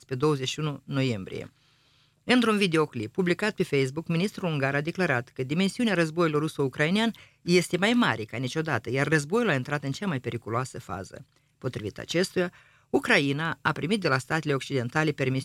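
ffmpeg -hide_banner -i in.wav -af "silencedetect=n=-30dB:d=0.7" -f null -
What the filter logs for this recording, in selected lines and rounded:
silence_start: 1.44
silence_end: 2.28 | silence_duration: 0.84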